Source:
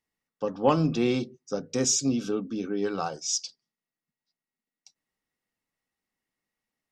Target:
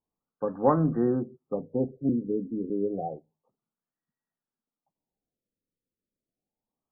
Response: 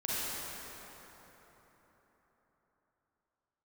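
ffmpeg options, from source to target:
-filter_complex "[0:a]asettb=1/sr,asplit=3[a][b][c];[a]atrim=end=2.094[d];[b]atrim=start=2.09:end=2.7,asetpts=PTS-STARTPTS,afade=t=in:d=0.004:c=qsin,afade=t=out:st=0.606:d=0.004:c=qsin,asuperstop=centerf=1200:order=20:qfactor=0.53[e];[c]atrim=start=2.696[f];[d][e]acrossfade=d=0.004:c1=hsin:c2=qsin[g];[g][f]acrossfade=d=0.004:c1=qsin:c2=hsin,afftfilt=real='re*lt(b*sr/1024,580*pow(2000/580,0.5+0.5*sin(2*PI*0.3*pts/sr)))':imag='im*lt(b*sr/1024,580*pow(2000/580,0.5+0.5*sin(2*PI*0.3*pts/sr)))':win_size=1024:overlap=0.75"

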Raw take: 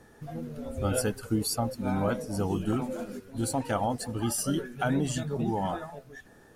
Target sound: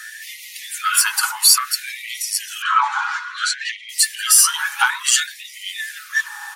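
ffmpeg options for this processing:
-filter_complex "[0:a]aecho=1:1:6.2:0.42,asoftclip=type=tanh:threshold=-20.5dB,asettb=1/sr,asplit=3[a][b][c];[a]atrim=end=2.624[d];[b]atrim=start=2.62:end=3.89,asetpts=PTS-STARTPTS,afade=t=in:d=0.004:c=qsin,afade=t=out:st=1.266:d=0.004:c=qsin,highpass=390,equalizer=f=680:t=q:w=4:g=9,equalizer=f=1.1k:t=q:w=4:g=7,equalizer=f=1.5k:t=q:w=4:g=5,equalizer=f=2.6k:t=q:w=4:g=-4,equalizer=f=4.9k:t=q:w=4:g=-7,lowpass=f=5.3k:w=0.5412,lowpass=f=5.3k:w=1.3066[e];[c]atrim=start=3.886[f];[d][e]acrossfade=d=0.004:c1=hsin:c2=qsin[g];[g][f]acrossfade=d=0.004:c1=qsin:c2=hsin,alimiter=level_in=28.5dB:limit=-1dB:release=50:level=0:latency=1,afftfilt=real='re*gte(b*sr/1024,780*pow(1900/780,0.5+0.5*sin(2*PI*0.58*pts/sr)))':imag='im*gte(b*sr/1024,780*pow(1900/780,0.5+0.5*sin(2*PI*0.58*pts/sr)))':win_size=1024:overlap=0.75,volume=-1.5dB"

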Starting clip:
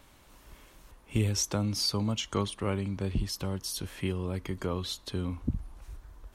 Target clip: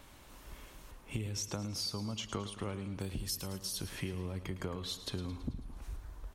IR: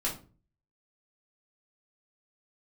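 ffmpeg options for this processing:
-filter_complex "[0:a]asettb=1/sr,asplit=3[a][b][c];[a]atrim=end=2.994[d];[b]atrim=start=2.99:end=3.6,asetpts=PTS-STARTPTS,afade=t=in:d=0.004:c=qsin,afade=t=out:st=0.606:d=0.004:c=qsin,aemphasis=mode=production:type=75fm[e];[c]atrim=start=3.596[f];[d][e]acrossfade=d=0.004:c1=hsin:c2=qsin[g];[g][f]acrossfade=d=0.004:c1=qsin:c2=hsin,acompressor=threshold=-37dB:ratio=6,aecho=1:1:109|218|327|436|545|654:0.224|0.13|0.0753|0.0437|0.0253|0.0147,volume=1.5dB"

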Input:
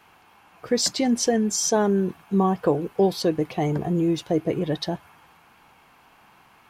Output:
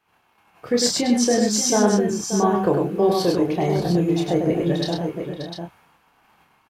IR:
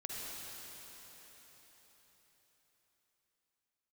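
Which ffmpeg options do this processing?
-filter_complex "[0:a]agate=range=-16dB:threshold=-53dB:ratio=16:detection=peak,asplit=2[a][b];[b]adelay=29,volume=-4.5dB[c];[a][c]amix=inputs=2:normalize=0,aecho=1:1:100|581|701:0.631|0.266|0.447"

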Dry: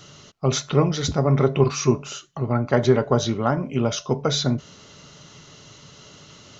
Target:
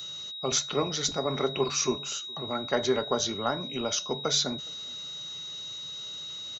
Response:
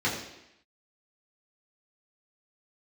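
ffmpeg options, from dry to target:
-filter_complex "[0:a]lowshelf=f=370:g=-5.5,aeval=exprs='val(0)+0.0178*sin(2*PI*3800*n/s)':c=same,highshelf=f=5.1k:g=11,acrossover=split=160[a][b];[a]aeval=exprs='0.0133*(abs(mod(val(0)/0.0133+3,4)-2)-1)':c=same[c];[c][b]amix=inputs=2:normalize=0,asplit=2[d][e];[e]adelay=414,volume=-27dB,highshelf=f=4k:g=-9.32[f];[d][f]amix=inputs=2:normalize=0,volume=-5.5dB"

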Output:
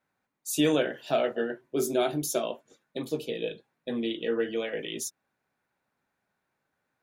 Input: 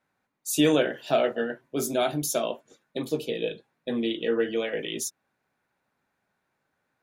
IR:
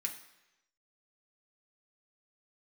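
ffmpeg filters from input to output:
-filter_complex "[0:a]asettb=1/sr,asplit=3[a][b][c];[a]atrim=end=1.374[d];[b]atrim=start=1.37:end=2.4,asetpts=PTS-STARTPTS,afade=t=in:d=0.004:c=qsin,afade=t=out:st=1.026:d=0.004:c=qsin,equalizer=f=370:t=o:w=0.35:g=8.5[e];[c]atrim=start=2.396[f];[d][e]acrossfade=d=0.004:c1=hsin:c2=qsin[g];[g][f]acrossfade=d=0.004:c1=qsin:c2=hsin,volume=-3dB"

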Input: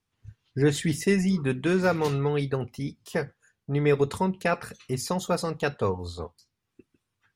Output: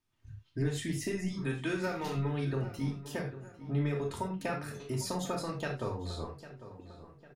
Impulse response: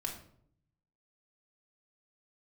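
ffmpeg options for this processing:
-filter_complex "[0:a]asettb=1/sr,asplit=3[a][b][c];[a]atrim=end=1.284[d];[b]atrim=start=1.28:end=2.15,asetpts=PTS-STARTPTS,afade=t=in:d=0.004:c=qsin,afade=t=out:st=0.866:d=0.004:c=qsin,lowshelf=f=490:g=-7[e];[c]atrim=start=2.146[f];[d][e]acrossfade=d=0.004:c1=hsin:c2=qsin[g];[g][f]acrossfade=d=0.004:c1=qsin:c2=hsin,acompressor=threshold=-28dB:ratio=6,asplit=2[h][i];[i]adelay=801,lowpass=f=2.3k:p=1,volume=-13.5dB,asplit=2[j][k];[k]adelay=801,lowpass=f=2.3k:p=1,volume=0.48,asplit=2[l][m];[m]adelay=801,lowpass=f=2.3k:p=1,volume=0.48,asplit=2[n][o];[o]adelay=801,lowpass=f=2.3k:p=1,volume=0.48,asplit=2[p][q];[q]adelay=801,lowpass=f=2.3k:p=1,volume=0.48[r];[h][j][l][n][p][r]amix=inputs=6:normalize=0[s];[1:a]atrim=start_sample=2205,atrim=end_sample=4410[t];[s][t]afir=irnorm=-1:irlink=0,volume=-2.5dB"

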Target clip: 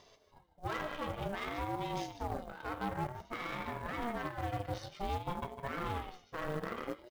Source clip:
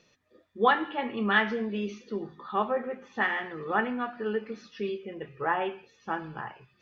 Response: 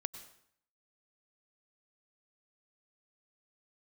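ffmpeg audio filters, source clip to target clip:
-af "areverse,acompressor=threshold=-41dB:ratio=5,areverse,aecho=1:1:146:0.282,asetrate=42336,aresample=44100,lowshelf=f=140:t=q:w=1.5:g=7.5,alimiter=level_in=13dB:limit=-24dB:level=0:latency=1:release=66,volume=-13dB,asuperstop=centerf=2100:order=8:qfactor=2.6,aeval=exprs='0.0178*(cos(1*acos(clip(val(0)/0.0178,-1,1)))-cos(1*PI/2))+0.00112*(cos(3*acos(clip(val(0)/0.0178,-1,1)))-cos(3*PI/2))+0.00282*(cos(4*acos(clip(val(0)/0.0178,-1,1)))-cos(4*PI/2))+0.00282*(cos(5*acos(clip(val(0)/0.0178,-1,1)))-cos(5*PI/2))+0.00251*(cos(7*acos(clip(val(0)/0.0178,-1,1)))-cos(7*PI/2))':c=same,acrusher=bits=6:mode=log:mix=0:aa=0.000001,aeval=exprs='val(0)*sin(2*PI*430*n/s+430*0.3/0.54*sin(2*PI*0.54*n/s))':c=same,volume=10dB"

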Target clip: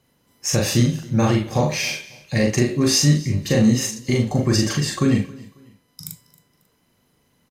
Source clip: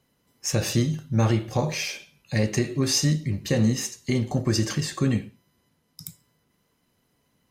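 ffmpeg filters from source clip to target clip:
-filter_complex "[0:a]asplit=2[a][b];[b]adelay=41,volume=-2.5dB[c];[a][c]amix=inputs=2:normalize=0,asplit=2[d][e];[e]aecho=0:1:272|544:0.0841|0.0261[f];[d][f]amix=inputs=2:normalize=0,volume=3.5dB"

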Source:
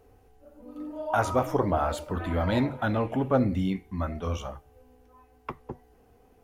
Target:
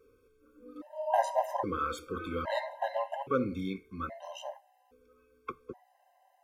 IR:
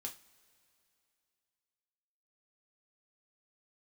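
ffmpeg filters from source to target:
-af "bass=f=250:g=-14,treble=f=4k:g=-3,afftfilt=real='re*gt(sin(2*PI*0.61*pts/sr)*(1-2*mod(floor(b*sr/1024/530),2)),0)':imag='im*gt(sin(2*PI*0.61*pts/sr)*(1-2*mod(floor(b*sr/1024/530),2)),0)':win_size=1024:overlap=0.75"

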